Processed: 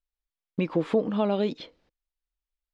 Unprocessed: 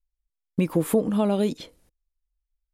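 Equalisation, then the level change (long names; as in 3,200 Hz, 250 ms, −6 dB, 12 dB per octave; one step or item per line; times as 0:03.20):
low-pass filter 4,600 Hz 24 dB per octave
low-shelf EQ 170 Hz −11 dB
0.0 dB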